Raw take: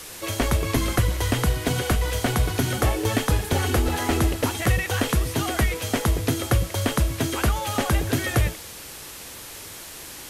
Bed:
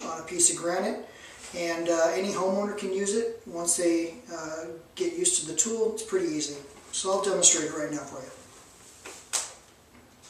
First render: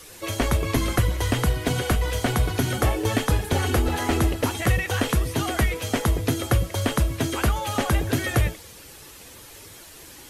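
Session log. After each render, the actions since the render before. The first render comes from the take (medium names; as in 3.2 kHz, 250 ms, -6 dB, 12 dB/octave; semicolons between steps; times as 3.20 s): noise reduction 8 dB, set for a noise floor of -40 dBFS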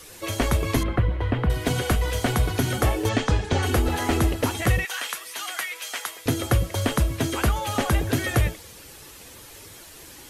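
0.83–1.50 s: distance through air 480 m; 3.09–3.63 s: low-pass 7.1 kHz 24 dB/octave; 4.85–6.26 s: high-pass 1.3 kHz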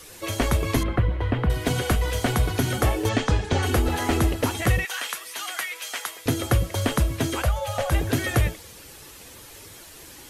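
7.42–7.92 s: FFT filter 110 Hz 0 dB, 370 Hz -25 dB, 540 Hz +6 dB, 890 Hz -4 dB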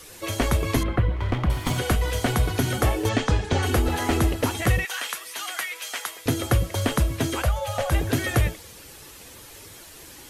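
1.16–1.78 s: comb filter that takes the minimum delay 0.91 ms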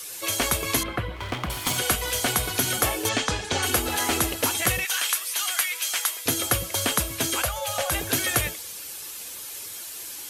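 tilt EQ +3 dB/octave; band-stop 1.9 kHz, Q 17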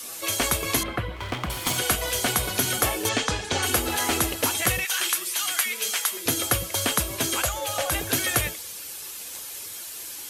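add bed -16 dB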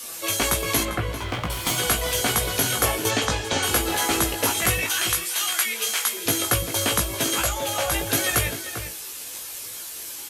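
doubling 18 ms -4 dB; echo from a far wall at 68 m, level -9 dB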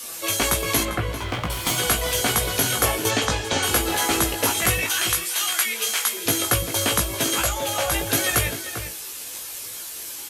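trim +1 dB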